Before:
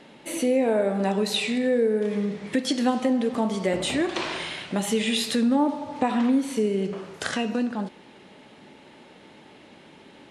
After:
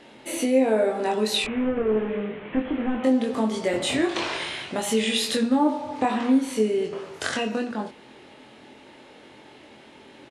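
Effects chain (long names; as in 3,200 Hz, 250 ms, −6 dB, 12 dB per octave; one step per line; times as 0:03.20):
0:01.44–0:03.04: linear delta modulator 16 kbit/s, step −38.5 dBFS
parametric band 180 Hz −10.5 dB 0.29 octaves
double-tracking delay 23 ms −3 dB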